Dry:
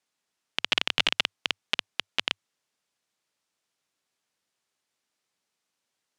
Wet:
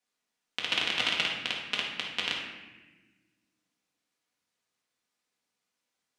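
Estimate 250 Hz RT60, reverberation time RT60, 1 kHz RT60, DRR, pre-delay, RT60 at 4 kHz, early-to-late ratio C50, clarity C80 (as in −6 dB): 2.2 s, 1.2 s, 1.0 s, −4.0 dB, 4 ms, 0.90 s, 2.0 dB, 5.0 dB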